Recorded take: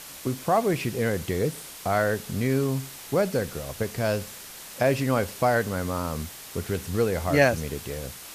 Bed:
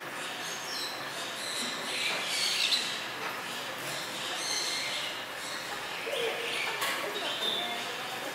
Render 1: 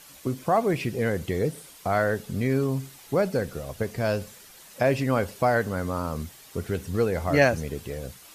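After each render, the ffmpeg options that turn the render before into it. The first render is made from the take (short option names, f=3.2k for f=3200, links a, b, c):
-af "afftdn=nr=9:nf=-42"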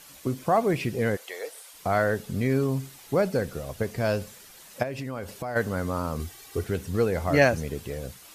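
-filter_complex "[0:a]asplit=3[a][b][c];[a]afade=t=out:st=1.15:d=0.02[d];[b]highpass=f=590:w=0.5412,highpass=f=590:w=1.3066,afade=t=in:st=1.15:d=0.02,afade=t=out:st=1.73:d=0.02[e];[c]afade=t=in:st=1.73:d=0.02[f];[d][e][f]amix=inputs=3:normalize=0,asplit=3[g][h][i];[g]afade=t=out:st=4.82:d=0.02[j];[h]acompressor=threshold=-31dB:ratio=4:attack=3.2:release=140:knee=1:detection=peak,afade=t=in:st=4.82:d=0.02,afade=t=out:st=5.55:d=0.02[k];[i]afade=t=in:st=5.55:d=0.02[l];[j][k][l]amix=inputs=3:normalize=0,asettb=1/sr,asplit=3[m][n][o];[m]atrim=end=6.194[p];[n]atrim=start=6.19:end=6.64,asetpts=PTS-STARTPTS,afade=t=in:d=0.004:c=qsin,afade=t=out:st=0.446:d=0.004:c=qsin,aecho=1:1:2.6:0.74,atrim=end_sample=19845[q];[o]atrim=start=6.636[r];[p][q]acrossfade=d=0.004:c1=hsin:c2=qsin[s];[s][r]acrossfade=d=0.004:c1=qsin:c2=hsin"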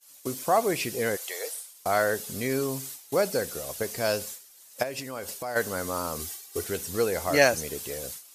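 -af "agate=range=-33dB:threshold=-39dB:ratio=3:detection=peak,bass=f=250:g=-11,treble=f=4k:g=12"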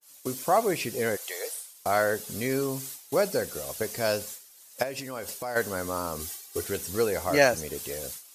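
-af "adynamicequalizer=threshold=0.0141:dfrequency=1700:dqfactor=0.7:tfrequency=1700:tqfactor=0.7:attack=5:release=100:ratio=0.375:range=2:mode=cutabove:tftype=highshelf"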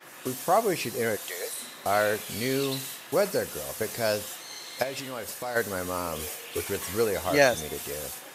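-filter_complex "[1:a]volume=-9.5dB[a];[0:a][a]amix=inputs=2:normalize=0"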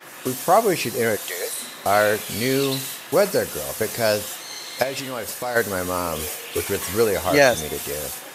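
-af "volume=6.5dB,alimiter=limit=-3dB:level=0:latency=1"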